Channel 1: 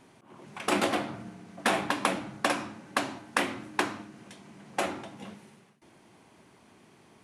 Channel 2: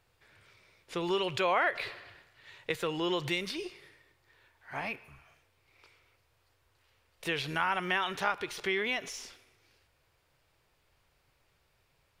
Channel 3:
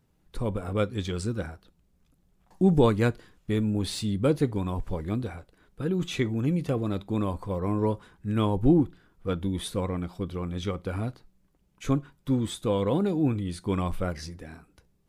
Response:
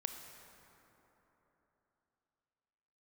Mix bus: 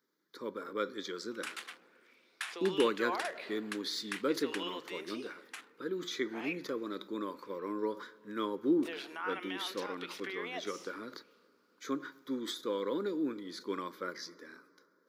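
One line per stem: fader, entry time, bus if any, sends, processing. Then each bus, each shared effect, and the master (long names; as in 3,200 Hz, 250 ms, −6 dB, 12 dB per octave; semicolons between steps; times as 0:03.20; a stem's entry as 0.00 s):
−9.5 dB, 0.75 s, no send, adaptive Wiener filter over 25 samples; high-pass filter 1,400 Hz 24 dB per octave
−9.0 dB, 1.60 s, no send, brickwall limiter −23.5 dBFS, peak gain reduction 9 dB; auto-filter bell 0.55 Hz 610–5,000 Hz +9 dB
−3.0 dB, 0.00 s, send −12 dB, phaser with its sweep stopped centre 2,700 Hz, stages 6; level that may fall only so fast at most 130 dB per second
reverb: on, RT60 3.6 s, pre-delay 22 ms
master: high-pass filter 320 Hz 24 dB per octave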